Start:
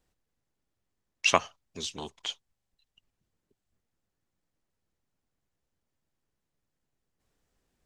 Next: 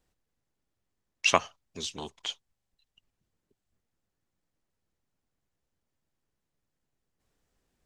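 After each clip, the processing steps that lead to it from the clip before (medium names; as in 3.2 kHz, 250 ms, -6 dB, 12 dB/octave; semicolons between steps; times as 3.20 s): no audible change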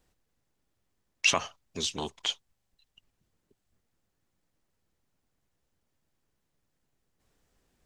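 peak limiter -16 dBFS, peak gain reduction 12 dB; trim +4.5 dB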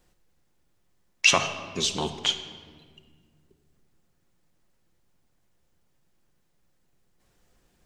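simulated room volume 2400 m³, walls mixed, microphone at 0.91 m; trim +5 dB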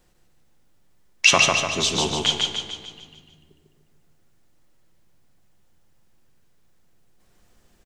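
feedback delay 148 ms, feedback 51%, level -3 dB; trim +3.5 dB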